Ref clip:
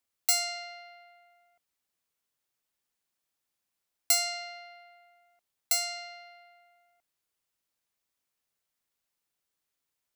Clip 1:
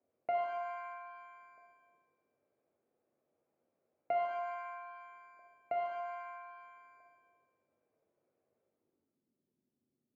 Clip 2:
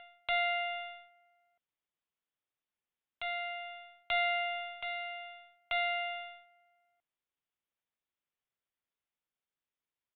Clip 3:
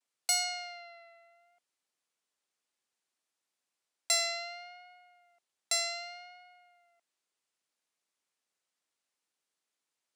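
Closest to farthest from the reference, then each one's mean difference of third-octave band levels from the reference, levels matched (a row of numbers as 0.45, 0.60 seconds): 3, 2, 1; 3.0, 8.0, 13.0 decibels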